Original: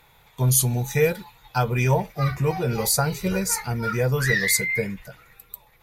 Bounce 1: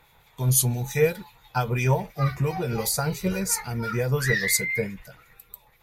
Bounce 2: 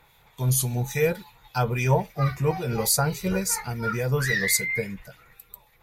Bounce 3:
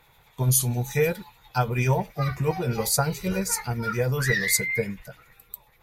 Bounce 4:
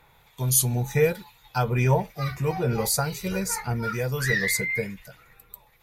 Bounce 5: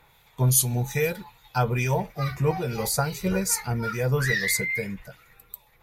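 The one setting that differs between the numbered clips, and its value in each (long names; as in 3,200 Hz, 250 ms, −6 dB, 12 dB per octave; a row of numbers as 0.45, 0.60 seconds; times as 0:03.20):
two-band tremolo in antiphase, speed: 5.8, 3.6, 10, 1.1, 2.4 Hertz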